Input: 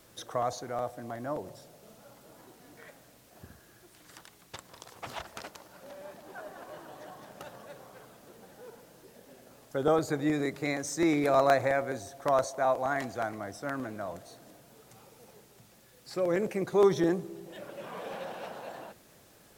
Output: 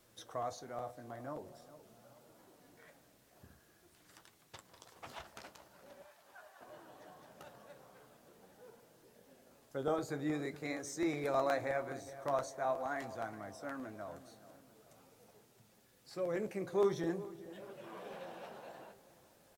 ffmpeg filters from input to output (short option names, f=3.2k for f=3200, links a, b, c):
-filter_complex "[0:a]asettb=1/sr,asplit=3[a][b][c];[a]atrim=end=6.024[d];[b]atrim=start=6.02:end=6.61,asetpts=PTS-STARTPTS,afade=t=in:d=0.004:c=qsin,afade=t=out:st=0.586:d=0.004:c=qsin,highpass=900[e];[c]atrim=start=6.606[f];[d][e]acrossfade=d=0.004:c1=hsin:c2=qsin[g];[g][f]acrossfade=d=0.004:c1=qsin:c2=hsin,asplit=2[h][i];[i]adelay=421,lowpass=f=2k:p=1,volume=-15.5dB,asplit=2[j][k];[k]adelay=421,lowpass=f=2k:p=1,volume=0.51,asplit=2[l][m];[m]adelay=421,lowpass=f=2k:p=1,volume=0.51,asplit=2[n][o];[o]adelay=421,lowpass=f=2k:p=1,volume=0.51,asplit=2[p][q];[q]adelay=421,lowpass=f=2k:p=1,volume=0.51[r];[h][j][l][n][p][r]amix=inputs=6:normalize=0,flanger=delay=8.1:depth=7.7:regen=-49:speed=0.45:shape=triangular,volume=-5dB"